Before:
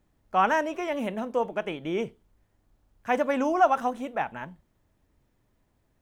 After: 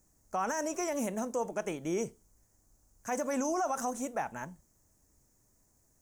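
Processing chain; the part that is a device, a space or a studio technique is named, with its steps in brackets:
over-bright horn tweeter (high shelf with overshoot 4,700 Hz +12.5 dB, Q 3; brickwall limiter −21 dBFS, peak gain reduction 11.5 dB)
level −2.5 dB

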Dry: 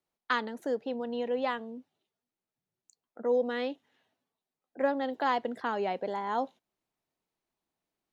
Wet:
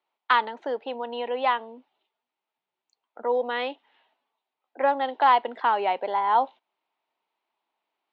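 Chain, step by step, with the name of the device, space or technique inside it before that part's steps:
phone earpiece (loudspeaker in its box 480–3,300 Hz, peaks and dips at 500 Hz −3 dB, 910 Hz +7 dB, 1,700 Hz −4 dB)
high-shelf EQ 3,000 Hz +7 dB
level +7 dB

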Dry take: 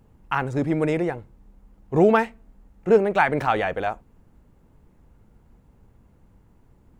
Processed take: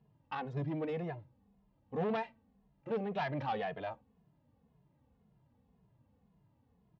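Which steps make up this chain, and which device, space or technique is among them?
barber-pole flanger into a guitar amplifier (barber-pole flanger 2.4 ms −1.9 Hz; soft clipping −20 dBFS, distortion −9 dB; loudspeaker in its box 100–4,300 Hz, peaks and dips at 140 Hz +4 dB, 360 Hz −9 dB, 1,400 Hz −9 dB, 2,200 Hz −5 dB)
level −7.5 dB

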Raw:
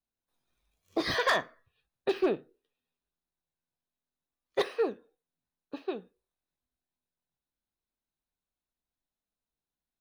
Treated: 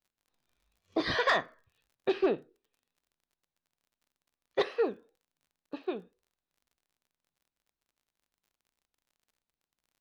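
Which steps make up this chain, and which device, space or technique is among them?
lo-fi chain (low-pass filter 5,000 Hz 12 dB per octave; tape wow and flutter; surface crackle 40 per second −57 dBFS)

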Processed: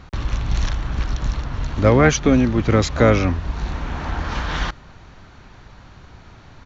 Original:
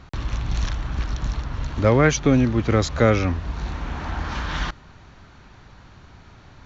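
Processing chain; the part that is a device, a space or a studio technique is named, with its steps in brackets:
octave pedal (pitch-shifted copies added −12 semitones −9 dB)
level +2.5 dB

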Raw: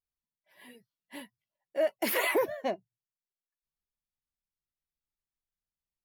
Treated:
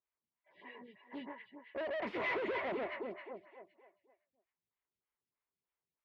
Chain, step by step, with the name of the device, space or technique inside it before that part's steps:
delay that swaps between a low-pass and a high-pass 130 ms, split 1,600 Hz, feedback 62%, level −2 dB
vibe pedal into a guitar amplifier (phaser with staggered stages 3.2 Hz; tube saturation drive 40 dB, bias 0.3; loudspeaker in its box 77–3,400 Hz, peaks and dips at 390 Hz +6 dB, 1,000 Hz +6 dB, 2,100 Hz +6 dB)
level +2.5 dB

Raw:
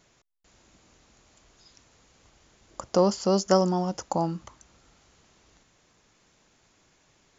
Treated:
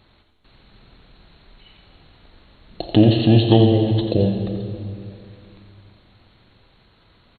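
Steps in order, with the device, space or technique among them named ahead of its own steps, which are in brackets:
monster voice (pitch shifter −9 semitones; low-shelf EQ 130 Hz +7 dB; single-tap delay 87 ms −10 dB; convolution reverb RT60 2.4 s, pre-delay 22 ms, DRR 5 dB)
level +6 dB

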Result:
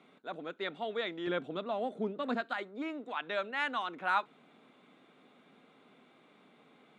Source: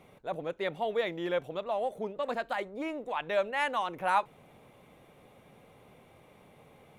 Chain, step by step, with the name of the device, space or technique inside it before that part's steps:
television speaker (loudspeaker in its box 190–7,400 Hz, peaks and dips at 260 Hz +6 dB, 540 Hz −7 dB, 870 Hz −4 dB, 1,400 Hz +7 dB, 3,700 Hz +6 dB, 5,800 Hz −7 dB)
0:01.27–0:02.41: low-shelf EQ 380 Hz +11.5 dB
level −3.5 dB

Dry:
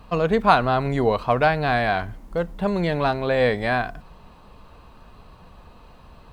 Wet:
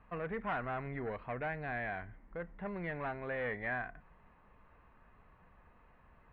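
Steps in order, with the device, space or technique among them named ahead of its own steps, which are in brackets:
0:00.80–0:02.40: dynamic equaliser 1,200 Hz, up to −5 dB, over −33 dBFS, Q 0.99
overdriven synthesiser ladder filter (soft clipping −17 dBFS, distortion −11 dB; transistor ladder low-pass 2,200 Hz, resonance 60%)
level −6 dB

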